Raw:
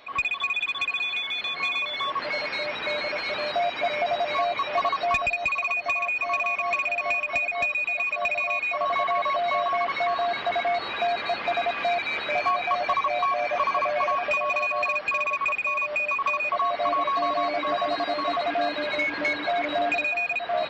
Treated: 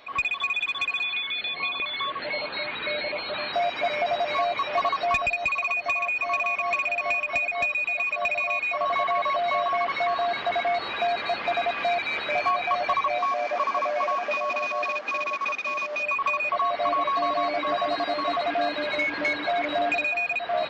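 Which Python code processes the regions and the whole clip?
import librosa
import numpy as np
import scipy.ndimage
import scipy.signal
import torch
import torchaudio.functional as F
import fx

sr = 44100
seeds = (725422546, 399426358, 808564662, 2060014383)

y = fx.chain(x, sr, fx.filter_lfo_notch(shape='saw_up', hz=1.3, low_hz=410.0, high_hz=2400.0, q=2.2),
    fx.brickwall_lowpass(high_hz=4600.0), at=(1.03, 3.53))
y = fx.chain(y, sr, fx.cvsd(bps=32000),
    fx.steep_highpass(hz=200.0, slope=36),
    fx.high_shelf(hz=3600.0, db=-11.0), at=(13.18, 16.03))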